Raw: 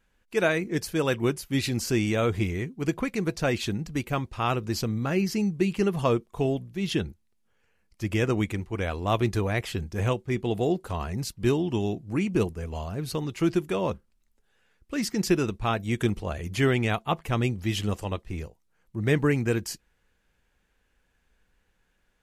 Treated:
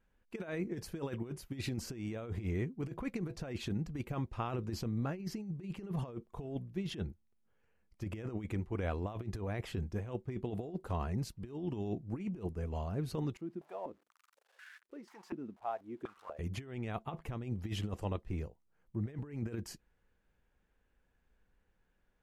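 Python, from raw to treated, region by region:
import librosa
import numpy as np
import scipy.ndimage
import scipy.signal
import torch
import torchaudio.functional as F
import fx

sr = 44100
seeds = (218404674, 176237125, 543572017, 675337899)

y = fx.chain(x, sr, fx.crossing_spikes(level_db=-23.5),
    fx.tilt_shelf(db=-7.5, hz=770.0),
    fx.filter_held_bandpass(hz=4.1, low_hz=240.0, high_hz=1600.0), at=(13.37, 16.39))
y = fx.high_shelf(y, sr, hz=2000.0, db=-11.0)
y = fx.over_compress(y, sr, threshold_db=-29.0, ratio=-0.5)
y = y * 10.0 ** (-7.5 / 20.0)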